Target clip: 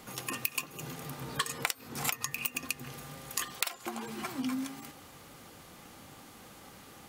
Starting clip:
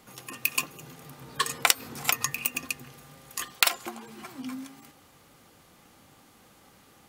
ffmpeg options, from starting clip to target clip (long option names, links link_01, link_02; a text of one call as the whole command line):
ffmpeg -i in.wav -af "acompressor=threshold=-34dB:ratio=10,volume=5dB" out.wav